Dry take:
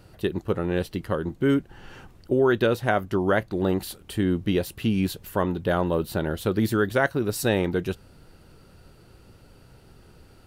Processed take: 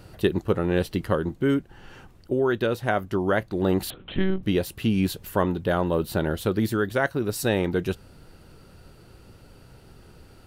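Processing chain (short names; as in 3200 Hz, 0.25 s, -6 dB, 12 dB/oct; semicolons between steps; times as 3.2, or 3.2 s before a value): vocal rider 0.5 s; 3.9–4.43 monotone LPC vocoder at 8 kHz 190 Hz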